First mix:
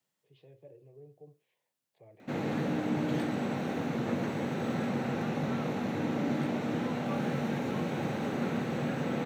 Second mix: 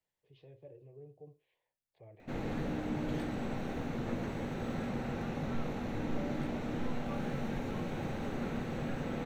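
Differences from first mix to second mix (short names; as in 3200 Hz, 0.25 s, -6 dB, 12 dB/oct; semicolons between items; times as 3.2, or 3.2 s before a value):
second voice -10.0 dB; background -5.5 dB; master: remove HPF 120 Hz 24 dB/oct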